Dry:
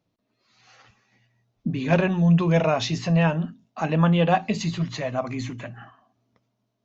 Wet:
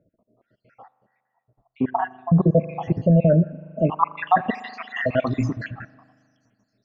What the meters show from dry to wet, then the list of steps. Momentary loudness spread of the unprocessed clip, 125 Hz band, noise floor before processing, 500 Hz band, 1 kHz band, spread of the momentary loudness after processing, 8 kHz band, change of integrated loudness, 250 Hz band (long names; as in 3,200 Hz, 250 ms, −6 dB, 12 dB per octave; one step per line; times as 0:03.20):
14 LU, +0.5 dB, −76 dBFS, +1.5 dB, +4.0 dB, 14 LU, can't be measured, +1.0 dB, +0.5 dB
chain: time-frequency cells dropped at random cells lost 73%
spring reverb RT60 2 s, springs 39 ms, chirp 45 ms, DRR 19.5 dB
brickwall limiter −18.5 dBFS, peak gain reduction 8 dB
low-pass filter sweep 780 Hz → 5,900 Hz, 0:03.44–0:06.08
level +9 dB